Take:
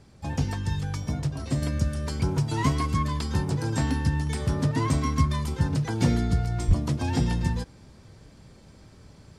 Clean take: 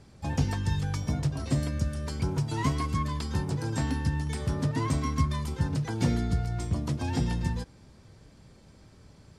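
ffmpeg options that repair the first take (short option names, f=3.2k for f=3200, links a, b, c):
-filter_complex "[0:a]asplit=3[a][b][c];[a]afade=t=out:st=6.67:d=0.02[d];[b]highpass=f=140:w=0.5412,highpass=f=140:w=1.3066,afade=t=in:st=6.67:d=0.02,afade=t=out:st=6.79:d=0.02[e];[c]afade=t=in:st=6.79:d=0.02[f];[d][e][f]amix=inputs=3:normalize=0,asetnsamples=n=441:p=0,asendcmd='1.62 volume volume -3.5dB',volume=0dB"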